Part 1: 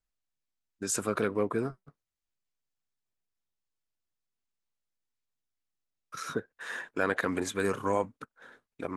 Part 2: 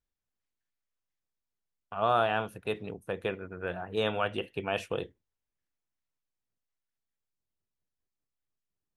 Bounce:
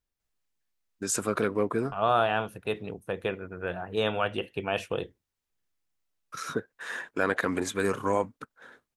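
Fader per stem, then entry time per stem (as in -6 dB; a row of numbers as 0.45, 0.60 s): +2.0, +2.0 dB; 0.20, 0.00 s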